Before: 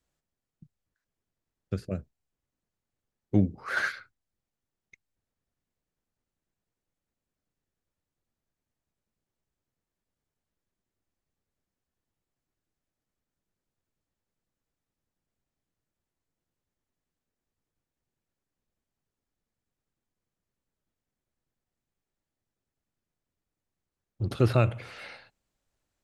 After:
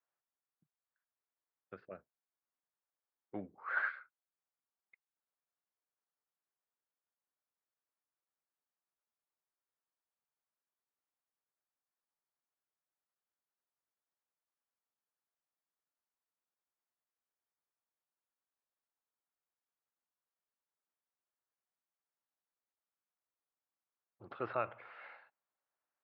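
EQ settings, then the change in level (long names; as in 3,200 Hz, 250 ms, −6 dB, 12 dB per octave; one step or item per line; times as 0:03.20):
four-pole ladder band-pass 1,500 Hz, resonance 20%
high-frequency loss of the air 210 metres
spectral tilt −3.5 dB per octave
+8.0 dB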